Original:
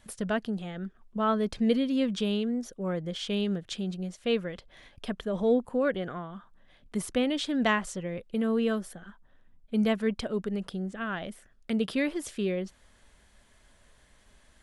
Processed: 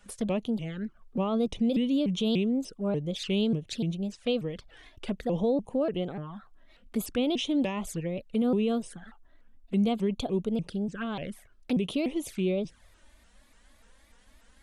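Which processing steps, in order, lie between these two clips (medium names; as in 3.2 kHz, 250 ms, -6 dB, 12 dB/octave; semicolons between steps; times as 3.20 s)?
peak limiter -21.5 dBFS, peak gain reduction 8.5 dB; touch-sensitive flanger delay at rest 4.4 ms, full sweep at -30 dBFS; vibrato with a chosen wave saw up 3.4 Hz, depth 250 cents; trim +3 dB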